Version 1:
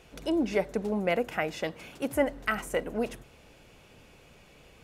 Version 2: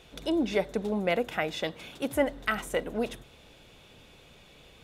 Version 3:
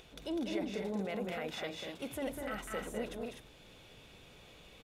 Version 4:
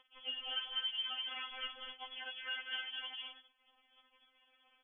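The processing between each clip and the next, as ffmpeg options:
ffmpeg -i in.wav -af "equalizer=frequency=3600:width_type=o:width=0.29:gain=10.5" out.wav
ffmpeg -i in.wav -af "acompressor=mode=upward:threshold=-45dB:ratio=2.5,alimiter=limit=-23dB:level=0:latency=1:release=24,aecho=1:1:200|235|251:0.562|0.335|0.531,volume=-7.5dB" out.wav
ffmpeg -i in.wav -af "aeval=exprs='sgn(val(0))*max(abs(val(0))-0.00224,0)':channel_layout=same,lowpass=frequency=3000:width_type=q:width=0.5098,lowpass=frequency=3000:width_type=q:width=0.6013,lowpass=frequency=3000:width_type=q:width=0.9,lowpass=frequency=3000:width_type=q:width=2.563,afreqshift=-3500,afftfilt=real='re*3.46*eq(mod(b,12),0)':imag='im*3.46*eq(mod(b,12),0)':win_size=2048:overlap=0.75,volume=4.5dB" out.wav

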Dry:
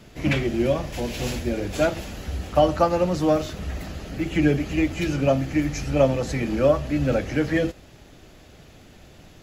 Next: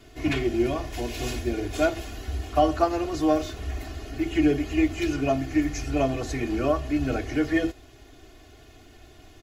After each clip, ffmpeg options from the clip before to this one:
ffmpeg -i in.wav -af "aecho=1:1:2.8:0.98,volume=-5dB" out.wav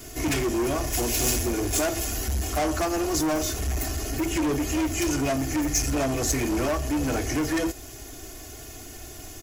ffmpeg -i in.wav -filter_complex "[0:a]asplit=2[link_01][link_02];[link_02]alimiter=limit=-19dB:level=0:latency=1:release=311,volume=2.5dB[link_03];[link_01][link_03]amix=inputs=2:normalize=0,asoftclip=type=tanh:threshold=-22dB,aexciter=amount=2.1:drive=9.8:freq=5400" out.wav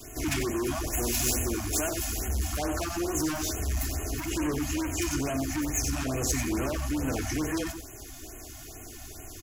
ffmpeg -i in.wav -filter_complex "[0:a]acrossover=split=270|1300|3900[link_01][link_02][link_03][link_04];[link_02]volume=29dB,asoftclip=hard,volume=-29dB[link_05];[link_01][link_05][link_03][link_04]amix=inputs=4:normalize=0,aecho=1:1:93:0.376,afftfilt=real='re*(1-between(b*sr/1024,400*pow(4600/400,0.5+0.5*sin(2*PI*2.3*pts/sr))/1.41,400*pow(4600/400,0.5+0.5*sin(2*PI*2.3*pts/sr))*1.41))':imag='im*(1-between(b*sr/1024,400*pow(4600/400,0.5+0.5*sin(2*PI*2.3*pts/sr))/1.41,400*pow(4600/400,0.5+0.5*sin(2*PI*2.3*pts/sr))*1.41))':win_size=1024:overlap=0.75,volume=-3dB" out.wav

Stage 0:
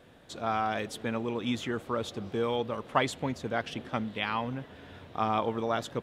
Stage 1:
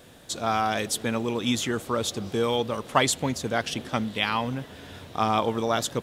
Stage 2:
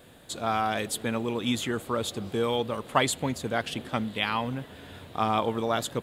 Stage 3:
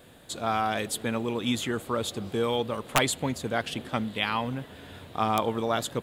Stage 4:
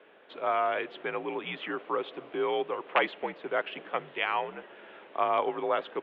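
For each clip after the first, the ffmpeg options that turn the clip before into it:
ffmpeg -i in.wav -af "bass=frequency=250:gain=1,treble=frequency=4000:gain=13,volume=4.5dB" out.wav
ffmpeg -i in.wav -af "equalizer=frequency=5700:width=3.3:gain=-10,volume=-2dB" out.wav
ffmpeg -i in.wav -af "aeval=exprs='(mod(3.55*val(0)+1,2)-1)/3.55':channel_layout=same" out.wav
ffmpeg -i in.wav -af "highpass=frequency=420:width_type=q:width=0.5412,highpass=frequency=420:width_type=q:width=1.307,lowpass=frequency=2900:width_type=q:width=0.5176,lowpass=frequency=2900:width_type=q:width=0.7071,lowpass=frequency=2900:width_type=q:width=1.932,afreqshift=-67" out.wav

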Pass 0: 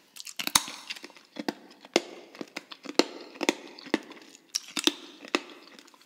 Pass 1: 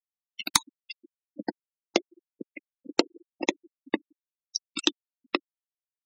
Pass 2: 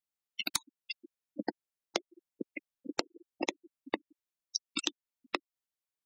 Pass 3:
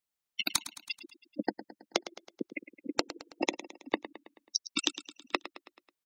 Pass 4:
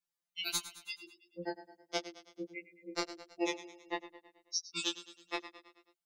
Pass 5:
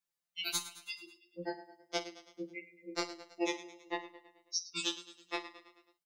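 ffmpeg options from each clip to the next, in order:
ffmpeg -i in.wav -af "afftfilt=real='re*gte(hypot(re,im),0.0562)':imag='im*gte(hypot(re,im),0.0562)':win_size=1024:overlap=0.75" out.wav
ffmpeg -i in.wav -af "acompressor=threshold=-30dB:ratio=16,volume=1dB" out.wav
ffmpeg -i in.wav -af "aecho=1:1:108|216|324|432|540:0.2|0.106|0.056|0.0297|0.0157,volume=3dB" out.wav
ffmpeg -i in.wav -af "flanger=delay=16:depth=6.4:speed=1.5,afftfilt=real='re*2.83*eq(mod(b,8),0)':imag='im*2.83*eq(mod(b,8),0)':win_size=2048:overlap=0.75,volume=1dB" out.wav
ffmpeg -i in.wav -af "aecho=1:1:50|51:0.106|0.188" out.wav

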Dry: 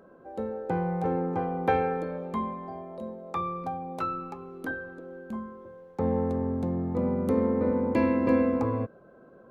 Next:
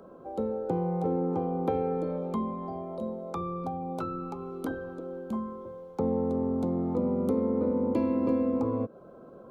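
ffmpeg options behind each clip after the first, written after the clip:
ffmpeg -i in.wav -filter_complex "[0:a]superequalizer=11b=0.282:12b=0.562,acrossover=split=200|480[link_01][link_02][link_03];[link_01]acompressor=threshold=-45dB:ratio=4[link_04];[link_02]acompressor=threshold=-31dB:ratio=4[link_05];[link_03]acompressor=threshold=-43dB:ratio=4[link_06];[link_04][link_05][link_06]amix=inputs=3:normalize=0,volume=4.5dB" out.wav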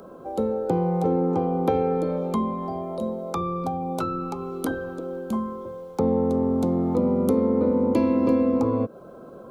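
ffmpeg -i in.wav -af "highshelf=frequency=3400:gain=9.5,volume=6dB" out.wav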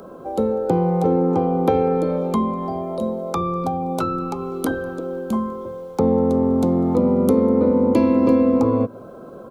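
ffmpeg -i in.wav -filter_complex "[0:a]asplit=2[link_01][link_02];[link_02]adelay=198.3,volume=-24dB,highshelf=frequency=4000:gain=-4.46[link_03];[link_01][link_03]amix=inputs=2:normalize=0,volume=4.5dB" out.wav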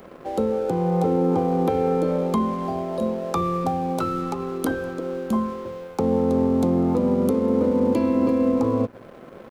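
ffmpeg -i in.wav -af "alimiter=limit=-11dB:level=0:latency=1:release=316,aeval=exprs='sgn(val(0))*max(abs(val(0))-0.00668,0)':channel_layout=same" out.wav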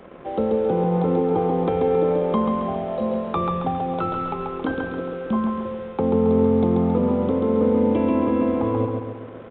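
ffmpeg -i in.wav -filter_complex "[0:a]asplit=2[link_01][link_02];[link_02]aecho=0:1:136|272|408|544|680|816|952:0.631|0.328|0.171|0.0887|0.0461|0.024|0.0125[link_03];[link_01][link_03]amix=inputs=2:normalize=0,aresample=8000,aresample=44100" out.wav

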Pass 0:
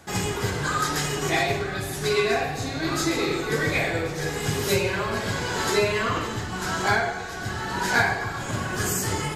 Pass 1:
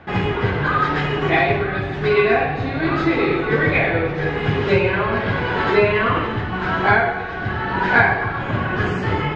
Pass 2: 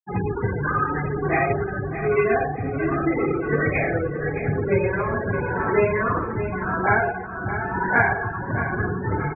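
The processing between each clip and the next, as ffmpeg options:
ffmpeg -i in.wav -af "lowpass=frequency=2900:width=0.5412,lowpass=frequency=2900:width=1.3066,volume=7dB" out.wav
ffmpeg -i in.wav -filter_complex "[0:a]equalizer=frequency=3200:width_type=o:width=0.66:gain=-8.5,afftfilt=real='re*gte(hypot(re,im),0.158)':imag='im*gte(hypot(re,im),0.158)':win_size=1024:overlap=0.75,asplit=2[link_01][link_02];[link_02]aecho=0:1:620|1240|1860|2480:0.299|0.122|0.0502|0.0206[link_03];[link_01][link_03]amix=inputs=2:normalize=0,volume=-3.5dB" out.wav

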